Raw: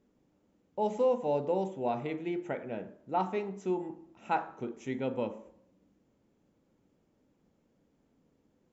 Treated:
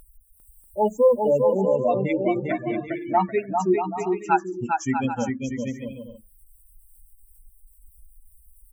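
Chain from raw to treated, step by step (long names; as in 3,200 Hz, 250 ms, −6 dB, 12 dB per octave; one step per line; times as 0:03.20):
spectral dynamics exaggerated over time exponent 3
0:02.34–0:02.88: band-pass filter 170–3,300 Hz
in parallel at +1 dB: upward compression, threshold −27 dBFS
on the sum: gate on every frequency bin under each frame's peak −30 dB strong
on a send: bouncing-ball delay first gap 400 ms, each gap 0.6×, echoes 5
on the sum: level +6 dB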